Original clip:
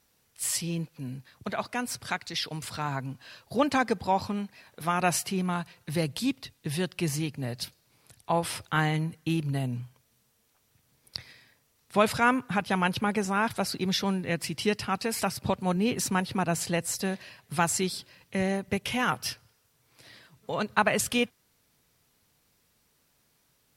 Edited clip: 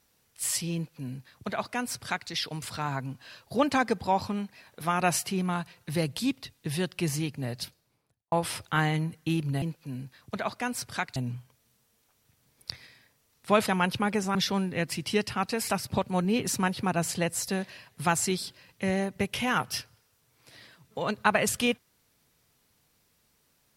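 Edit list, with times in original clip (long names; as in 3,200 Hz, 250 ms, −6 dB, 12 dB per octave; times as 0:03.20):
0:00.75–0:02.29: duplicate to 0:09.62
0:07.55–0:08.32: fade out and dull
0:12.13–0:12.69: remove
0:13.37–0:13.87: remove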